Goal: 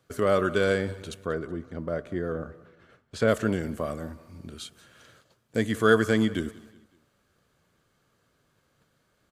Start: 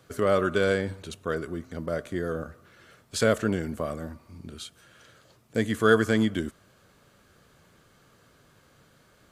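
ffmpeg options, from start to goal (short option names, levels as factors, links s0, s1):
-filter_complex "[0:a]asplit=3[s0][s1][s2];[s0]afade=t=out:st=1.25:d=0.02[s3];[s1]lowpass=f=1700:p=1,afade=t=in:st=1.25:d=0.02,afade=t=out:st=3.27:d=0.02[s4];[s2]afade=t=in:st=3.27:d=0.02[s5];[s3][s4][s5]amix=inputs=3:normalize=0,agate=range=0.316:threshold=0.00158:ratio=16:detection=peak,aecho=1:1:187|374|561:0.0891|0.0383|0.0165"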